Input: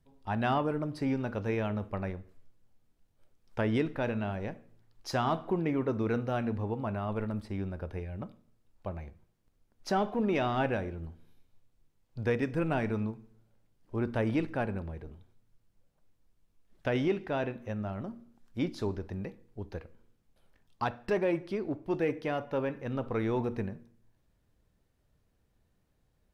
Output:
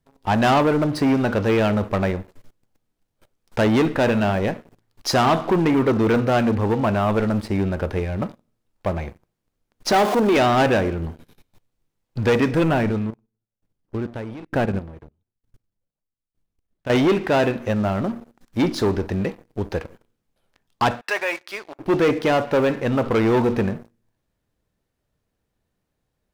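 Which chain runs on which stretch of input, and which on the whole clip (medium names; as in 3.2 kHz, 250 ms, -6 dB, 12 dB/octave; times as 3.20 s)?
9.92–10.37 s: jump at every zero crossing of -38 dBFS + high-pass 240 Hz
12.71–16.90 s: bass shelf 320 Hz +7 dB + level held to a coarse grid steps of 10 dB + sawtooth tremolo in dB decaying 1.1 Hz, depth 23 dB
21.01–21.79 s: high-pass 1.2 kHz + band-stop 3.1 kHz, Q 20
whole clip: waveshaping leveller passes 3; bass shelf 130 Hz -7 dB; trim +6 dB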